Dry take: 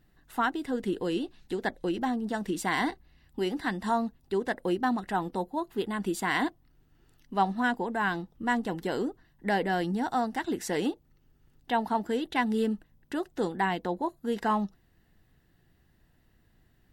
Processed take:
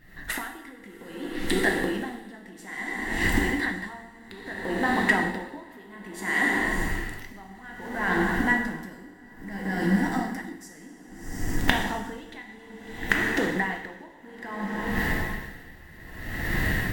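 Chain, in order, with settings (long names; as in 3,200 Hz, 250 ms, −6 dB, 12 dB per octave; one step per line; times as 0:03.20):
one scale factor per block 7 bits
camcorder AGC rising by 74 dB per second
gain on a spectral selection 0:08.60–0:11.58, 340–4,600 Hz −9 dB
downward compressor, threshold −29 dBFS, peak gain reduction 15 dB
parametric band 1,900 Hz +14 dB 0.33 octaves
feedback delay with all-pass diffusion 678 ms, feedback 67%, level −10 dB
dense smooth reverb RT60 1.8 s, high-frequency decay 0.85×, pre-delay 0 ms, DRR 0 dB
tremolo with a sine in dB 0.6 Hz, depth 23 dB
level +6 dB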